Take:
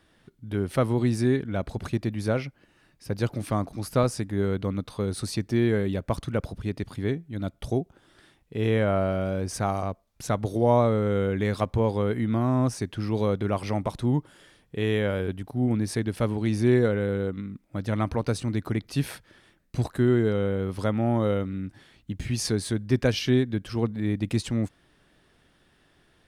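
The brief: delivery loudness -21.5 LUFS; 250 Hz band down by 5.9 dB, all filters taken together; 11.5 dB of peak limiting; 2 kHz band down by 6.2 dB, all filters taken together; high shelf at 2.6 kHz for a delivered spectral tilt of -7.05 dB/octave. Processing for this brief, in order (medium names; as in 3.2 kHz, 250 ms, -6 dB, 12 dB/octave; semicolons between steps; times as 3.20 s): peaking EQ 250 Hz -7.5 dB; peaking EQ 2 kHz -5.5 dB; treble shelf 2.6 kHz -6 dB; trim +13 dB; peak limiter -11.5 dBFS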